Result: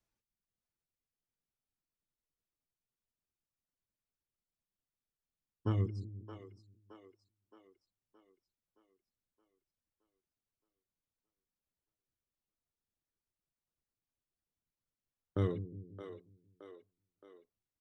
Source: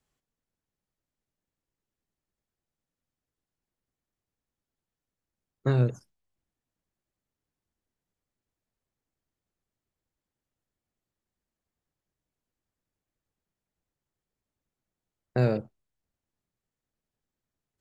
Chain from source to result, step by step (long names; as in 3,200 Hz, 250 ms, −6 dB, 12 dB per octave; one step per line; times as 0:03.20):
reverb reduction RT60 0.88 s
pitch vibrato 2.9 Hz 7.1 cents
pitch shifter −4 semitones
echo with a time of its own for lows and highs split 330 Hz, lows 179 ms, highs 620 ms, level −10 dB
level −7.5 dB